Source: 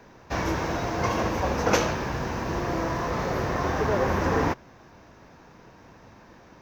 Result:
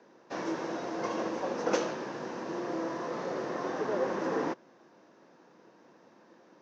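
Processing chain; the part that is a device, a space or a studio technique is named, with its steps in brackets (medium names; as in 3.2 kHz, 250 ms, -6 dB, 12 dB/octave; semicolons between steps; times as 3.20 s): television speaker (cabinet simulation 180–7300 Hz, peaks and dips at 340 Hz +6 dB, 520 Hz +5 dB, 2.3 kHz -4 dB); trim -9 dB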